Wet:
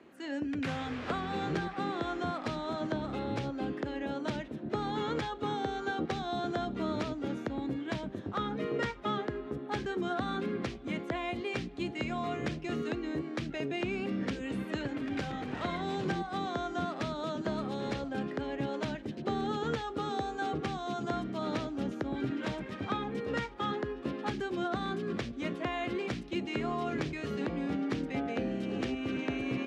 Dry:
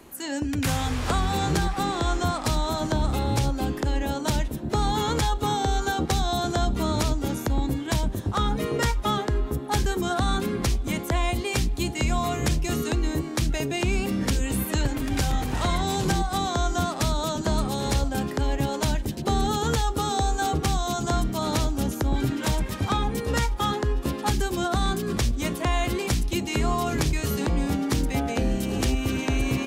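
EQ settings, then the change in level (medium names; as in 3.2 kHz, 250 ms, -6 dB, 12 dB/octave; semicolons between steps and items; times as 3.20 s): high-pass 190 Hz 12 dB/octave; low-pass 2.6 kHz 12 dB/octave; peaking EQ 920 Hz -6.5 dB 0.63 oct; -5.0 dB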